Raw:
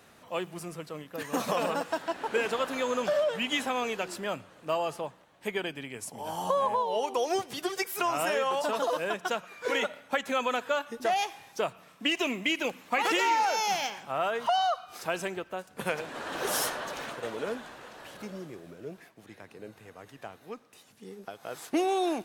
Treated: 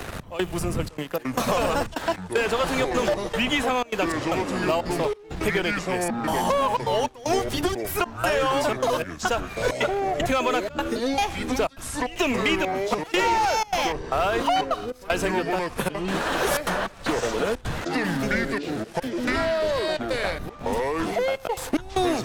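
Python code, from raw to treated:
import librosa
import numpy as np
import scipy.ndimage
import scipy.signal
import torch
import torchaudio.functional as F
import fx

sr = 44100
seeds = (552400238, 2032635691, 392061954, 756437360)

y = fx.dmg_wind(x, sr, seeds[0], corner_hz=81.0, level_db=-46.0)
y = fx.leveller(y, sr, passes=2)
y = fx.step_gate(y, sr, bpm=153, pattern='xx..xxxxx.', floor_db=-24.0, edge_ms=4.5)
y = fx.echo_pitch(y, sr, ms=692, semitones=-6, count=2, db_per_echo=-6.0)
y = fx.band_squash(y, sr, depth_pct=70)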